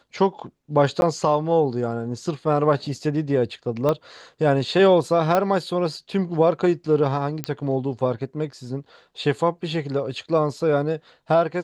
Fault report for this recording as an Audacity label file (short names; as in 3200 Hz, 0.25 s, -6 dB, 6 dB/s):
1.010000	1.020000	gap 11 ms
3.890000	3.890000	pop -11 dBFS
5.350000	5.350000	pop -8 dBFS
7.440000	7.440000	pop -10 dBFS